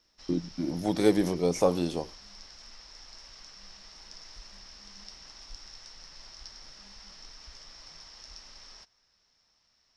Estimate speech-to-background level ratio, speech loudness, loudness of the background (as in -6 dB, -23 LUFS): 19.5 dB, -28.0 LUFS, -47.5 LUFS